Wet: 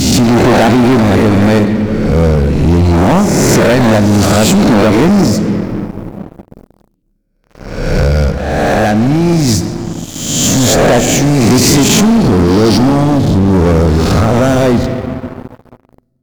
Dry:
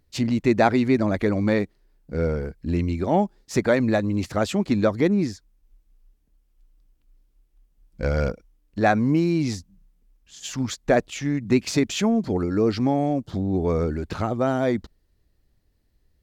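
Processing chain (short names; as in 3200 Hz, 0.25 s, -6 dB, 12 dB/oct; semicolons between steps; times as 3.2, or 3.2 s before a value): spectral swells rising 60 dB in 1.11 s; tone controls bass +5 dB, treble +10 dB; 8.02–9.48 compressor, threshold -19 dBFS, peak gain reduction 8.5 dB; low shelf 360 Hz +4 dB; expander -48 dBFS; on a send at -11 dB: reverb RT60 2.7 s, pre-delay 5 ms; on the sum: sample leveller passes 5; gain -5 dB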